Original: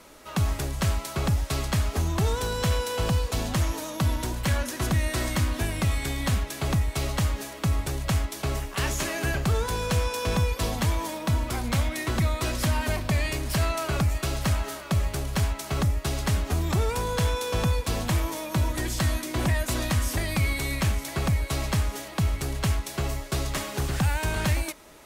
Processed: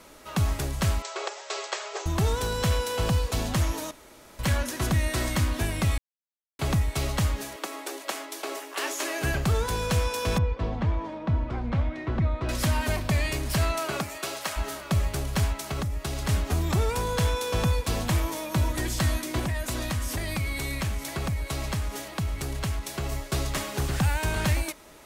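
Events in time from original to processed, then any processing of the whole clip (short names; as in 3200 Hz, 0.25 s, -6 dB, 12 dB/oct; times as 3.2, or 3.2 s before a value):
1.02–2.06 brick-wall FIR band-pass 350–8100 Hz
3.91–4.39 room tone
5.98–6.59 mute
7.56–9.22 elliptic high-pass 300 Hz, stop band 70 dB
10.38–12.49 tape spacing loss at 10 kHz 39 dB
13.79–14.56 HPF 170 Hz -> 600 Hz
15.61–16.29 compressor, threshold -26 dBFS
19.39–23.12 compressor 2.5:1, threshold -27 dBFS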